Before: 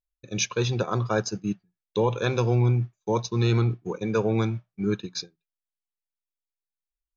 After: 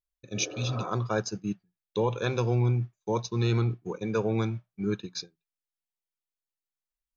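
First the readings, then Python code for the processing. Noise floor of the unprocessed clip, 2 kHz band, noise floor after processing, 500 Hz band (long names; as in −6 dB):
below −85 dBFS, −4.0 dB, below −85 dBFS, −4.0 dB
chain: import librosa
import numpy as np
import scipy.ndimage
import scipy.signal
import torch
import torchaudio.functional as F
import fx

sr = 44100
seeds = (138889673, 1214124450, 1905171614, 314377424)

y = fx.spec_repair(x, sr, seeds[0], start_s=0.36, length_s=0.49, low_hz=260.0, high_hz=2200.0, source='both')
y = y * 10.0 ** (-3.5 / 20.0)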